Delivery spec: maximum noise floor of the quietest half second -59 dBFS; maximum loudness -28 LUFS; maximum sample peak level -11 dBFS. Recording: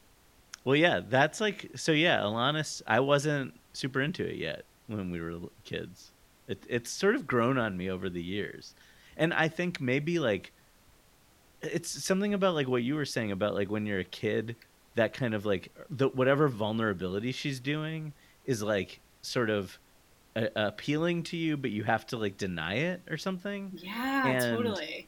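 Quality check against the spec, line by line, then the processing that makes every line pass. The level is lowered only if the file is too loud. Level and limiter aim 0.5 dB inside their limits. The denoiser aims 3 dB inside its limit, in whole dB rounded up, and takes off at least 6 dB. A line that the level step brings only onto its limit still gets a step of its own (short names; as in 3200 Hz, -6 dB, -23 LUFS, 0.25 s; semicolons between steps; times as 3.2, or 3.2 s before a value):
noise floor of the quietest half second -62 dBFS: OK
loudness -30.5 LUFS: OK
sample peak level -9.5 dBFS: fail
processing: limiter -11.5 dBFS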